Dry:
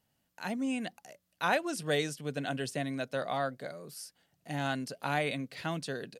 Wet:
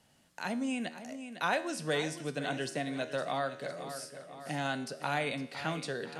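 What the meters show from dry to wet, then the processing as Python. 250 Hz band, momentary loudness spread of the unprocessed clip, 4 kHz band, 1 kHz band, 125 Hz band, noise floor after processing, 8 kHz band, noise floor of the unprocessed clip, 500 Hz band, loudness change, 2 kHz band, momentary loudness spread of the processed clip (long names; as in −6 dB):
−1.0 dB, 12 LU, 0.0 dB, −0.5 dB, −2.5 dB, −67 dBFS, −0.5 dB, −78 dBFS, −0.5 dB, −1.0 dB, 0.0 dB, 9 LU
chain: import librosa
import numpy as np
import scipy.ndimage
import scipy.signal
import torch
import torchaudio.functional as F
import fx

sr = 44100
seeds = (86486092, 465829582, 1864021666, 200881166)

y = scipy.signal.sosfilt(scipy.signal.butter(4, 11000.0, 'lowpass', fs=sr, output='sos'), x)
y = fx.peak_eq(y, sr, hz=65.0, db=-4.0, octaves=2.7)
y = fx.comb_fb(y, sr, f0_hz=79.0, decay_s=0.68, harmonics='all', damping=0.0, mix_pct=60)
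y = fx.echo_feedback(y, sr, ms=506, feedback_pct=41, wet_db=-14)
y = fx.band_squash(y, sr, depth_pct=40)
y = F.gain(torch.from_numpy(y), 6.0).numpy()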